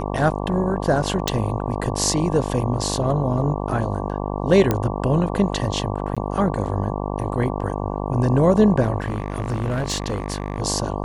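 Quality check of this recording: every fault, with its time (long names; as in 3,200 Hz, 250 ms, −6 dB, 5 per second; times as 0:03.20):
mains buzz 50 Hz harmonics 23 −26 dBFS
0:01.28: click
0:04.71: click −6 dBFS
0:06.15–0:06.17: drop-out 16 ms
0:09.00–0:10.62: clipping −18.5 dBFS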